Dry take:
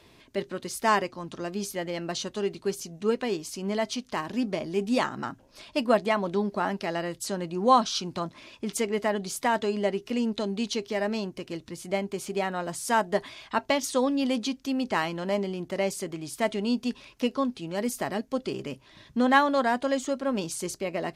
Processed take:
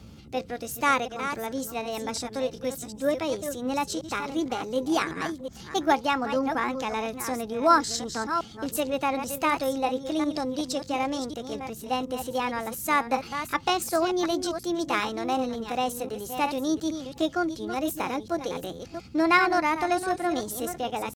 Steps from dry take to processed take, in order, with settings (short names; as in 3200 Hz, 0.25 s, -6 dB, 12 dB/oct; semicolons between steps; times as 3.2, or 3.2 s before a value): reverse delay 0.366 s, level -8.5 dB; band noise 38–200 Hz -48 dBFS; pitch shift +4.5 st